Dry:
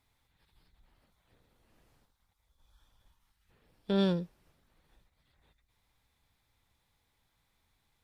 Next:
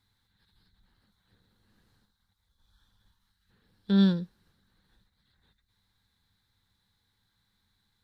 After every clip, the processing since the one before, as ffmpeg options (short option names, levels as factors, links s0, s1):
-af "equalizer=f=100:t=o:w=0.33:g=9,equalizer=f=200:t=o:w=0.33:g=11,equalizer=f=630:t=o:w=0.33:g=-9,equalizer=f=1600:t=o:w=0.33:g=8,equalizer=f=2500:t=o:w=0.33:g=-6,equalizer=f=4000:t=o:w=0.33:g=12,volume=0.75"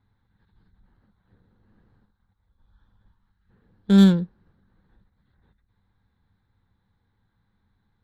-af "adynamicsmooth=sensitivity=6.5:basefreq=1400,volume=2.51"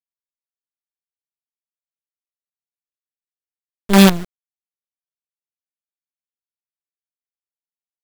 -af "acrusher=bits=3:dc=4:mix=0:aa=0.000001,volume=1.41"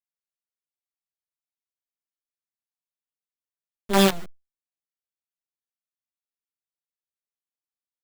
-filter_complex "[0:a]asplit=2[s0][s1];[s1]adelay=9.5,afreqshift=-0.54[s2];[s0][s2]amix=inputs=2:normalize=1,volume=0.668"